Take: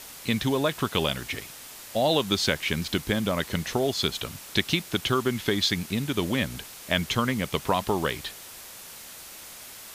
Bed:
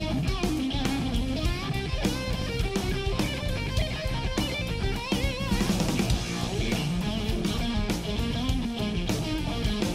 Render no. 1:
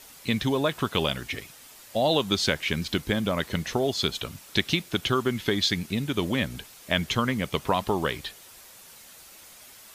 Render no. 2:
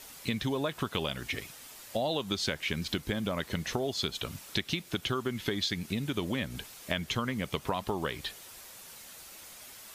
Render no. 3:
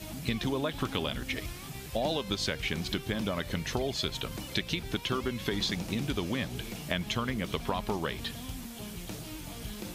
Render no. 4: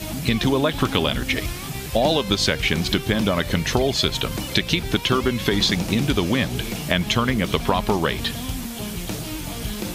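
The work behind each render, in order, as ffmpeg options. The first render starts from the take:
-af "afftdn=nr=7:nf=-44"
-af "acompressor=threshold=-30dB:ratio=3"
-filter_complex "[1:a]volume=-13.5dB[a];[0:a][a]amix=inputs=2:normalize=0"
-af "volume=11.5dB,alimiter=limit=-3dB:level=0:latency=1"

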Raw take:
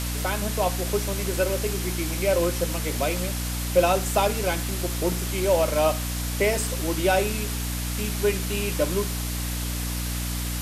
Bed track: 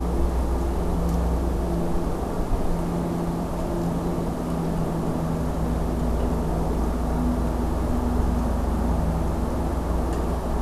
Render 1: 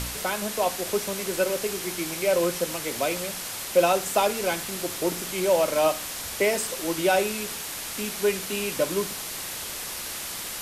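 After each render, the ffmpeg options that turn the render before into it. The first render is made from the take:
-af "bandreject=f=60:t=h:w=4,bandreject=f=120:t=h:w=4,bandreject=f=180:t=h:w=4,bandreject=f=240:t=h:w=4,bandreject=f=300:t=h:w=4"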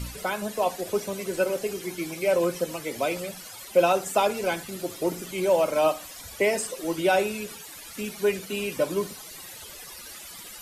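-af "afftdn=nr=15:nf=-35"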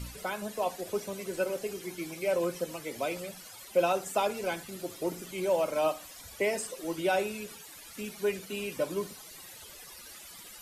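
-af "volume=-6dB"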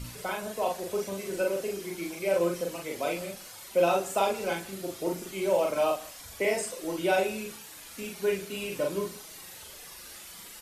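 -filter_complex "[0:a]asplit=2[a][b];[b]adelay=41,volume=-2dB[c];[a][c]amix=inputs=2:normalize=0,aecho=1:1:149:0.0841"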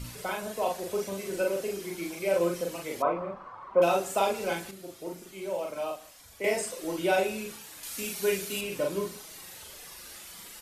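-filter_complex "[0:a]asettb=1/sr,asplit=3[a][b][c];[a]atrim=end=3.024[d];[b]atrim=start=3.02:end=3.82,asetpts=PTS-STARTPTS,afade=t=in:d=0.004:c=qsin,afade=t=out:st=0.796:d=0.004:c=qsin,lowpass=f=1.1k:t=q:w=8.2[e];[c]atrim=start=3.816[f];[d][e]acrossfade=d=0.004:c1=hsin:c2=qsin[g];[g][f]acrossfade=d=0.004:c1=qsin:c2=hsin,asettb=1/sr,asplit=3[h][i][j];[h]atrim=end=7.834[k];[i]atrim=start=7.83:end=8.61,asetpts=PTS-STARTPTS,afade=t=in:d=0.004:c=qsin,afade=t=out:st=0.776:d=0.004:c=qsin,highshelf=f=3.3k:g=9.5[l];[j]atrim=start=8.606[m];[k][l]acrossfade=d=0.004:c1=hsin:c2=qsin[n];[n][m]acrossfade=d=0.004:c1=qsin:c2=hsin,asplit=3[o][p][q];[o]atrim=end=4.712[r];[p]atrim=start=4.708:end=6.442,asetpts=PTS-STARTPTS,volume=-7.5dB[s];[q]atrim=start=6.438[t];[r][s]acrossfade=d=0.004:c1=hsin:c2=hsin[u];[u][t]acrossfade=d=0.004:c1=hsin:c2=hsin"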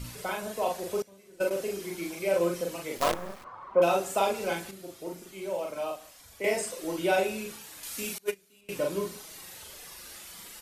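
-filter_complex "[0:a]asettb=1/sr,asplit=3[a][b][c];[a]atrim=end=1.024[d];[b]atrim=start=1.02:end=1.51,asetpts=PTS-STARTPTS,afade=t=in:d=0.004:c=qsin,afade=t=out:st=0.486:d=0.004:c=qsin,agate=range=-19dB:threshold=-30dB:ratio=16:release=100:detection=peak[e];[c]atrim=start=1.506[f];[d][e]acrossfade=d=0.004:c1=hsin:c2=qsin[g];[g][f]acrossfade=d=0.004:c1=qsin:c2=hsin,asplit=3[h][i][j];[h]afade=t=out:st=2.97:d=0.02[k];[i]acrusher=bits=5:dc=4:mix=0:aa=0.000001,afade=t=in:st=2.97:d=0.02,afade=t=out:st=3.43:d=0.02[l];[j]afade=t=in:st=3.43:d=0.02[m];[k][l][m]amix=inputs=3:normalize=0,asettb=1/sr,asplit=3[n][o][p];[n]atrim=end=8.184[q];[o]atrim=start=8.18:end=8.69,asetpts=PTS-STARTPTS,afade=t=in:d=0.004:c=qsin,afade=t=out:st=0.506:d=0.004:c=qsin,agate=range=-27dB:threshold=-24dB:ratio=16:release=100:detection=peak[r];[p]atrim=start=8.686[s];[q][r]acrossfade=d=0.004:c1=hsin:c2=qsin[t];[t][s]acrossfade=d=0.004:c1=qsin:c2=hsin"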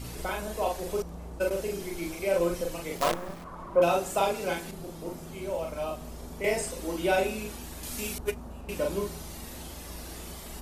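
-filter_complex "[1:a]volume=-18.5dB[a];[0:a][a]amix=inputs=2:normalize=0"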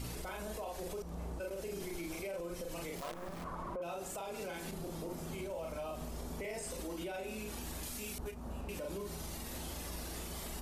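-af "acompressor=threshold=-34dB:ratio=5,alimiter=level_in=9.5dB:limit=-24dB:level=0:latency=1:release=38,volume=-9.5dB"

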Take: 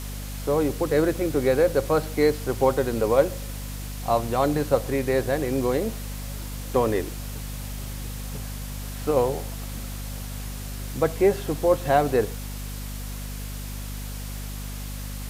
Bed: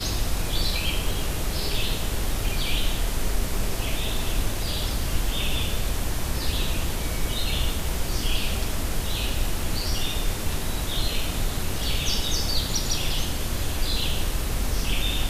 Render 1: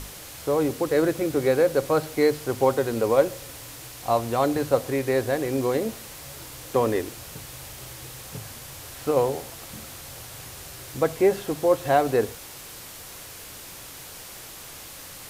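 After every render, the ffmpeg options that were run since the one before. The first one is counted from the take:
-af "bandreject=f=50:t=h:w=6,bandreject=f=100:t=h:w=6,bandreject=f=150:t=h:w=6,bandreject=f=200:t=h:w=6,bandreject=f=250:t=h:w=6"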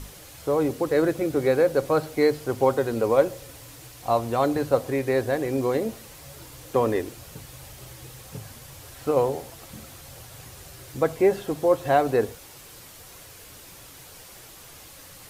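-af "afftdn=nr=6:nf=-42"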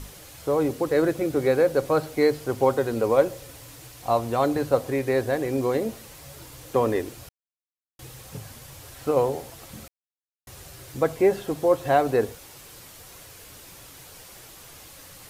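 -filter_complex "[0:a]asplit=5[a][b][c][d][e];[a]atrim=end=7.29,asetpts=PTS-STARTPTS,afade=t=out:st=7.286:d=0.004:c=hsin[f];[b]atrim=start=7.29:end=7.99,asetpts=PTS-STARTPTS,volume=0[g];[c]atrim=start=7.99:end=9.88,asetpts=PTS-STARTPTS,afade=t=in:d=0.004:c=hsin,afade=t=out:st=1.886:d=0.004:c=hsin[h];[d]atrim=start=9.88:end=10.47,asetpts=PTS-STARTPTS,volume=0[i];[e]atrim=start=10.47,asetpts=PTS-STARTPTS,afade=t=in:d=0.004:c=hsin[j];[f][g][h][i][j]concat=n=5:v=0:a=1"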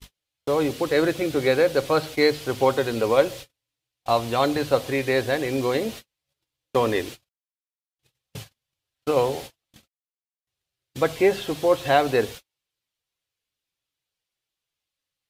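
-af "agate=range=-45dB:threshold=-37dB:ratio=16:detection=peak,equalizer=f=3.3k:t=o:w=1.6:g=11.5"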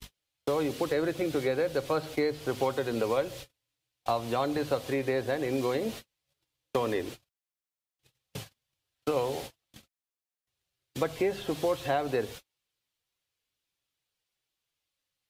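-filter_complex "[0:a]acrossover=split=150|1400[a][b][c];[a]acompressor=threshold=-46dB:ratio=4[d];[b]acompressor=threshold=-27dB:ratio=4[e];[c]acompressor=threshold=-42dB:ratio=4[f];[d][e][f]amix=inputs=3:normalize=0"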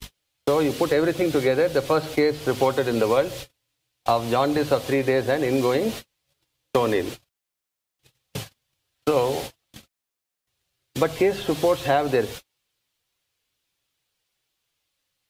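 -af "volume=8dB"

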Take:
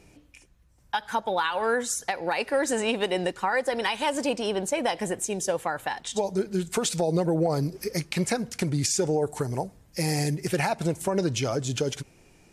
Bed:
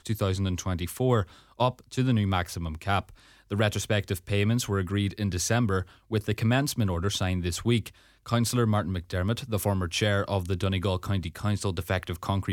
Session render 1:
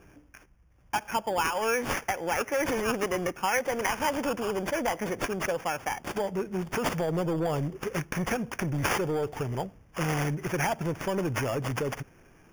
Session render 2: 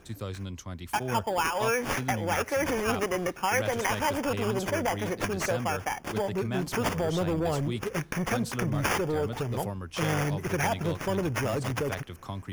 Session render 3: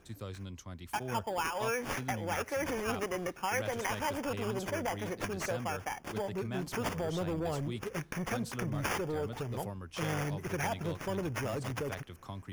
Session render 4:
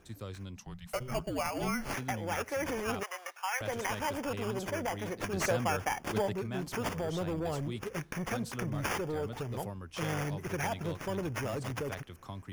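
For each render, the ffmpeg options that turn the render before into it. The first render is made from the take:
-filter_complex "[0:a]acrossover=split=930[a][b];[a]asoftclip=type=tanh:threshold=-25dB[c];[b]acrusher=samples=11:mix=1:aa=0.000001[d];[c][d]amix=inputs=2:normalize=0"
-filter_complex "[1:a]volume=-9.5dB[a];[0:a][a]amix=inputs=2:normalize=0"
-af "volume=-6.5dB"
-filter_complex "[0:a]asettb=1/sr,asplit=3[a][b][c];[a]atrim=end=0.564[d];[b]atrim=start=0.56:end=1.94,asetpts=PTS-STARTPTS,afade=t=in:d=0.004:c=qsin,afade=t=out:st=1.376:d=0.004:c=qsin,afreqshift=-260[e];[c]atrim=start=1.936[f];[d][e]acrossfade=d=0.004:c1=hsin:c2=qsin[g];[g][f]acrossfade=d=0.004:c1=qsin:c2=hsin,asettb=1/sr,asplit=3[h][i][j];[h]atrim=end=3.034[k];[i]atrim=start=3.03:end=3.61,asetpts=PTS-STARTPTS,afade=t=in:d=0.004:c=qsin,afade=t=out:st=0.576:d=0.004:c=qsin,highpass=f=730:w=0.5412,highpass=f=730:w=1.3066[l];[j]atrim=start=3.606[m];[k][l]acrossfade=d=0.004:c1=hsin:c2=qsin[n];[n][m]acrossfade=d=0.004:c1=qsin:c2=hsin,asettb=1/sr,asplit=3[o][p][q];[o]atrim=end=5.334[r];[p]atrim=start=5.33:end=6.33,asetpts=PTS-STARTPTS,afade=t=in:d=0.004:c=qsin,afade=t=out:st=0.996:d=0.004:c=qsin,acontrast=28[s];[q]atrim=start=6.326[t];[r][s]acrossfade=d=0.004:c1=hsin:c2=qsin[u];[u][t]acrossfade=d=0.004:c1=qsin:c2=hsin"

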